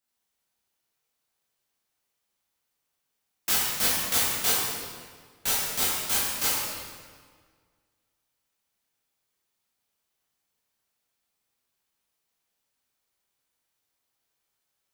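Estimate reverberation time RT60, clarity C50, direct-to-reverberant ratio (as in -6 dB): 1.7 s, -2.5 dB, -8.0 dB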